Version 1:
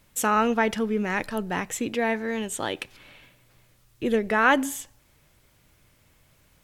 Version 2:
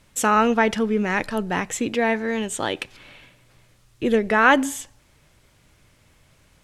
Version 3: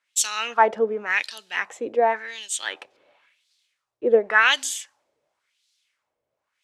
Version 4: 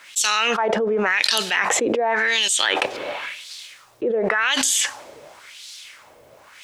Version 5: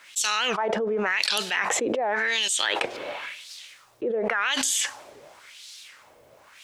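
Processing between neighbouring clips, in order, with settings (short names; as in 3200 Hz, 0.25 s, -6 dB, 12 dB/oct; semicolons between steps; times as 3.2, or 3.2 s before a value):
LPF 10000 Hz 12 dB/oct; gain +4 dB
LFO band-pass sine 0.92 Hz 500–4200 Hz; tone controls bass -8 dB, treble +10 dB; three-band expander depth 40%; gain +5.5 dB
fast leveller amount 100%; gain -8.5 dB
record warp 78 rpm, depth 160 cents; gain -5 dB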